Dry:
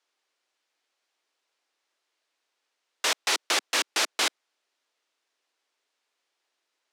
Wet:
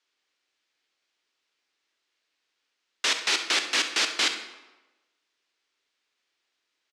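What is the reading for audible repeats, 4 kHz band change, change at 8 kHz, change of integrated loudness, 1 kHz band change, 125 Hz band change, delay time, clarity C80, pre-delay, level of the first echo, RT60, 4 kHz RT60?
1, +2.5 dB, -1.0 dB, +1.5 dB, -2.0 dB, n/a, 67 ms, 11.0 dB, 20 ms, -13.5 dB, 1.1 s, 0.80 s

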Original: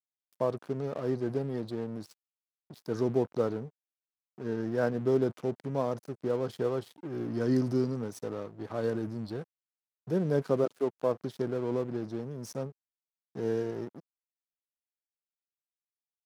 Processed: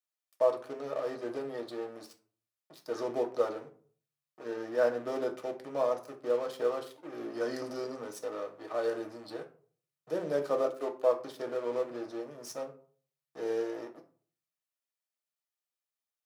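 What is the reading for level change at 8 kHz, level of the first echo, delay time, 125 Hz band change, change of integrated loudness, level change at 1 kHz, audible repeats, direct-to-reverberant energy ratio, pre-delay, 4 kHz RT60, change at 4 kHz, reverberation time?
n/a, none, none, -19.5 dB, -2.0 dB, +1.5 dB, none, 3.0 dB, 3 ms, 0.25 s, +1.5 dB, 0.50 s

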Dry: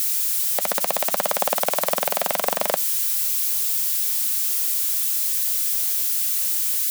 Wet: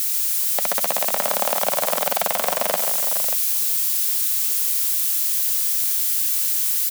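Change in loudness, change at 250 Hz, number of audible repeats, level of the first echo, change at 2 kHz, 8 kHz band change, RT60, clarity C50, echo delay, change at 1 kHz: +1.5 dB, 0.0 dB, 3, -6.5 dB, +1.5 dB, +1.5 dB, none, none, 0.138 s, +1.0 dB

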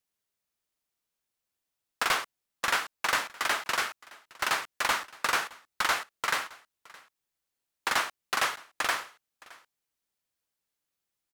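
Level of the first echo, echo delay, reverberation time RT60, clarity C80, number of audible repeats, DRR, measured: -22.5 dB, 0.617 s, none, none, 1, none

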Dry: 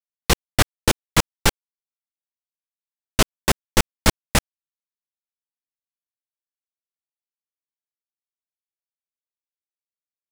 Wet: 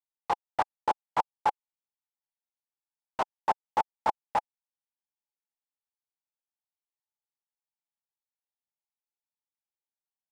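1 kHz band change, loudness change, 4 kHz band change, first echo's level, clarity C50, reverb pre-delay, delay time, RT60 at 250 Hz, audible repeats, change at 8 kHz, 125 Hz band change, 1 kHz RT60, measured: +0.5 dB, -9.5 dB, -23.5 dB, none, none, none, none, none, none, under -30 dB, -28.5 dB, none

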